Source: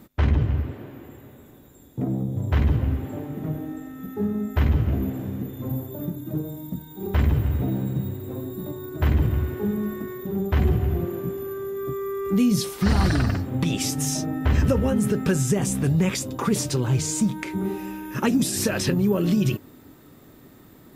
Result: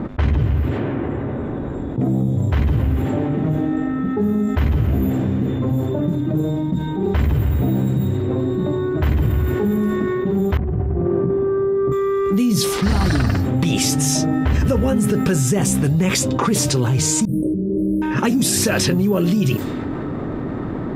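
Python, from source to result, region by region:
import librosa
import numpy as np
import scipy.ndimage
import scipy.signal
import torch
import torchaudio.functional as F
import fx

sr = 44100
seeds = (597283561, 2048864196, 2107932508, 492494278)

y = fx.chain(x, sr, fx.lowpass(hz=1100.0, slope=12),
    fx.over_compress(threshold_db=-29.0, ratio=-1.0), at=(10.57, 11.92))
y = fx.chain(y, sr, fx.low_shelf(hz=190.0, db=4.5),
    fx.over_compress(threshold_db=-32.0, ratio=-1.0),
    fx.brickwall_bandstop(low_hz=640.0, high_hz=8300.0), at=(17.25, 18.02))
y = fx.env_lowpass(y, sr, base_hz=1200.0, full_db=-20.5)
y = fx.env_flatten(y, sr, amount_pct=70)
y = y * 10.0 ** (1.0 / 20.0)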